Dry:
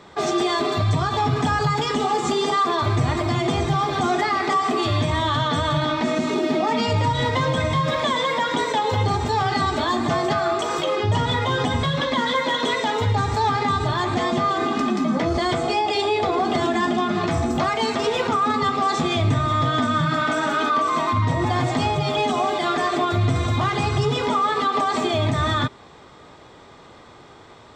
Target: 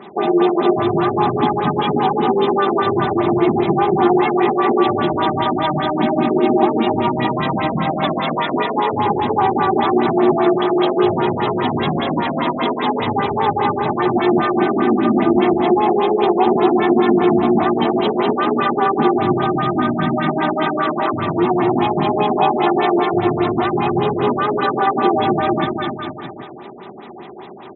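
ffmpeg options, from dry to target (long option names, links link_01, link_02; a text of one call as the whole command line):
ffmpeg -i in.wav -filter_complex "[0:a]aecho=1:1:5.1:0.4,acompressor=threshold=-27dB:ratio=2,asplit=4[link_01][link_02][link_03][link_04];[link_02]asetrate=22050,aresample=44100,atempo=2,volume=-12dB[link_05];[link_03]asetrate=55563,aresample=44100,atempo=0.793701,volume=-5dB[link_06];[link_04]asetrate=66075,aresample=44100,atempo=0.66742,volume=-16dB[link_07];[link_01][link_05][link_06][link_07]amix=inputs=4:normalize=0,highpass=160,equalizer=frequency=230:width_type=q:width=4:gain=3,equalizer=frequency=360:width_type=q:width=4:gain=9,equalizer=frequency=520:width_type=q:width=4:gain=-10,equalizer=frequency=750:width_type=q:width=4:gain=6,equalizer=frequency=1500:width_type=q:width=4:gain=-7,equalizer=frequency=4400:width_type=q:width=4:gain=7,lowpass=frequency=7200:width=0.5412,lowpass=frequency=7200:width=1.3066,aecho=1:1:240|444|617.4|764.8|890.1:0.631|0.398|0.251|0.158|0.1,afftfilt=real='re*lt(b*sr/1024,680*pow(4100/680,0.5+0.5*sin(2*PI*5*pts/sr)))':imag='im*lt(b*sr/1024,680*pow(4100/680,0.5+0.5*sin(2*PI*5*pts/sr)))':win_size=1024:overlap=0.75,volume=5.5dB" out.wav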